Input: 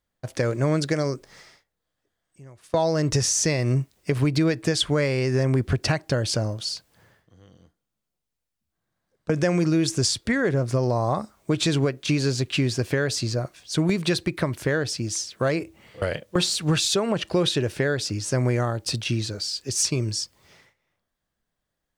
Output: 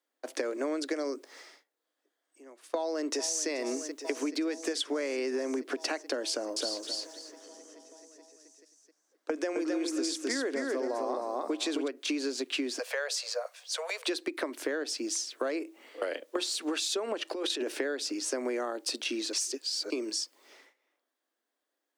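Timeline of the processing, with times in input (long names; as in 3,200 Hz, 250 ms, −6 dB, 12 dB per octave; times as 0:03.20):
0:02.75–0:03.48: delay throw 430 ms, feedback 80%, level −14.5 dB
0:06.30–0:11.88: repeating echo 263 ms, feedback 21%, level −3 dB
0:12.78–0:14.08: Butterworth high-pass 470 Hz 96 dB per octave
0:17.29–0:17.79: compressor whose output falls as the input rises −25 dBFS, ratio −0.5
0:19.33–0:19.90: reverse
whole clip: Butterworth high-pass 260 Hz 72 dB per octave; low-shelf EQ 440 Hz +3.5 dB; downward compressor, threshold −27 dBFS; level −2 dB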